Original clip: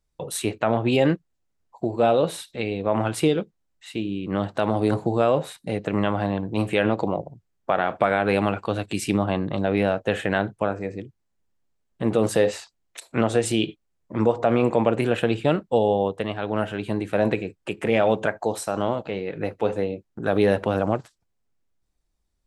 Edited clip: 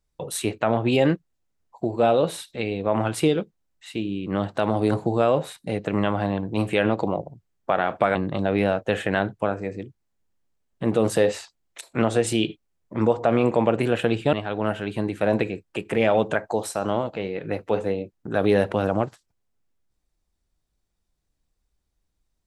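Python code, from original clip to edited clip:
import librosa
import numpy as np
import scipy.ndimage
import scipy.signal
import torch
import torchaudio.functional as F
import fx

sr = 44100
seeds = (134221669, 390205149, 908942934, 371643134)

y = fx.edit(x, sr, fx.cut(start_s=8.15, length_s=1.19),
    fx.cut(start_s=15.52, length_s=0.73), tone=tone)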